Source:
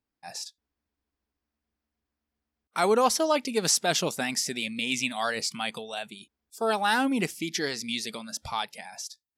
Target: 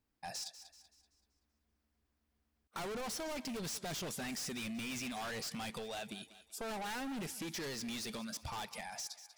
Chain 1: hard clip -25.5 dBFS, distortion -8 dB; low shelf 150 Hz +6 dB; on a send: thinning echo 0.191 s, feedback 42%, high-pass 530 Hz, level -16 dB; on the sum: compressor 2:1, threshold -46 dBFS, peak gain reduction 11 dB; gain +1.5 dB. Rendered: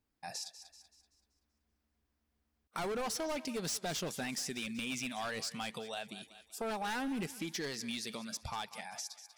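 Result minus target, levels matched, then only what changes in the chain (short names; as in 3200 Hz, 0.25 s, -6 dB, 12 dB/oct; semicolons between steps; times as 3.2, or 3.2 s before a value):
hard clip: distortion -6 dB
change: hard clip -36 dBFS, distortion -2 dB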